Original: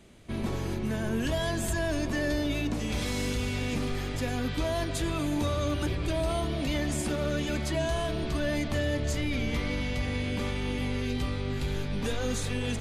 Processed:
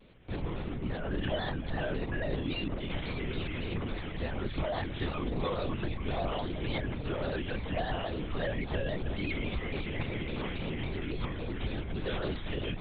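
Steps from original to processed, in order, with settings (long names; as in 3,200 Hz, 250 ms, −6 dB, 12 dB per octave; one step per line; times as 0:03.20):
reverb reduction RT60 0.74 s
linear-prediction vocoder at 8 kHz whisper
pitch modulation by a square or saw wave square 3.6 Hz, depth 100 cents
level −2 dB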